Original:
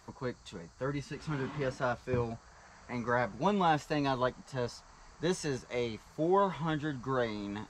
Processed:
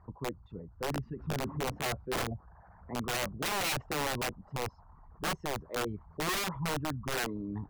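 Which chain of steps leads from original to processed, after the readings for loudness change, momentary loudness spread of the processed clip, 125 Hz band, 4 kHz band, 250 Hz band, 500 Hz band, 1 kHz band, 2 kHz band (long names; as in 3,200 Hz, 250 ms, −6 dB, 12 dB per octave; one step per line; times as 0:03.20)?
−1.0 dB, 9 LU, −1.0 dB, +6.5 dB, −3.5 dB, −4.5 dB, −3.5 dB, +2.0 dB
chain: spectral envelope exaggerated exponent 2
low-pass filter 1,100 Hz 12 dB per octave
parametric band 86 Hz +7 dB 1.1 octaves
wrap-around overflow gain 27 dB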